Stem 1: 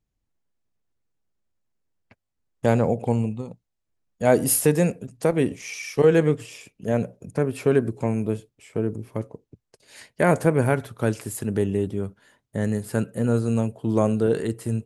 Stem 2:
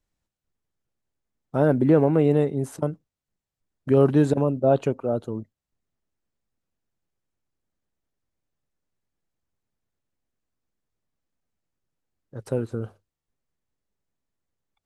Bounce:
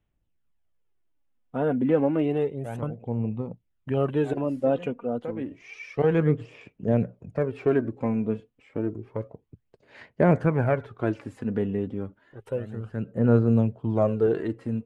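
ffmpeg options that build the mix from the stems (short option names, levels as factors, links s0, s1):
-filter_complex "[0:a]lowpass=2200,volume=0.708[s0];[1:a]highshelf=f=3800:t=q:w=3:g=-7.5,volume=0.501,asplit=2[s1][s2];[s2]apad=whole_len=655242[s3];[s0][s3]sidechaincompress=threshold=0.01:ratio=16:attack=34:release=608[s4];[s4][s1]amix=inputs=2:normalize=0,aphaser=in_gain=1:out_gain=1:delay=4.2:decay=0.49:speed=0.3:type=sinusoidal"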